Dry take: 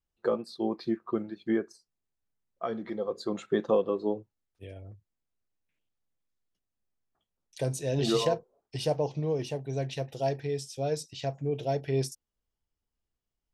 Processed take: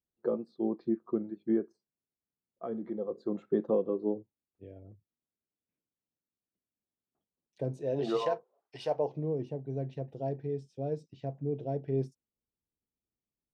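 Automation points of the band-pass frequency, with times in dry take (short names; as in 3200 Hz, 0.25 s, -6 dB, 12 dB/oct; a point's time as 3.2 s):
band-pass, Q 0.85
7.67 s 270 Hz
8.31 s 1100 Hz
8.86 s 1100 Hz
9.29 s 240 Hz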